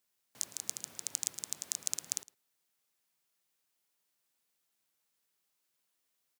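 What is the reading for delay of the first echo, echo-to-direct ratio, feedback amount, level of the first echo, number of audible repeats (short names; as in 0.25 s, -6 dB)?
0.11 s, -21.0 dB, no steady repeat, -21.0 dB, 1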